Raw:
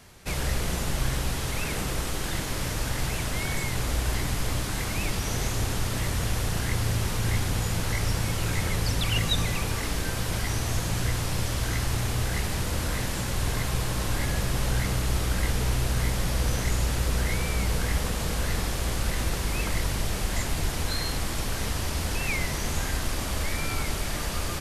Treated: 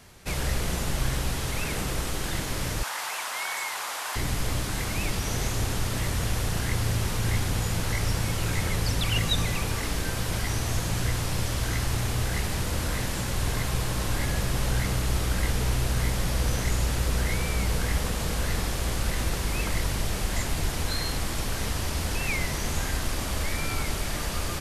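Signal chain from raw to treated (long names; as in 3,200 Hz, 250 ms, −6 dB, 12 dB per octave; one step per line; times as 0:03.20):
0:02.83–0:04.16: high-pass with resonance 940 Hz, resonance Q 1.9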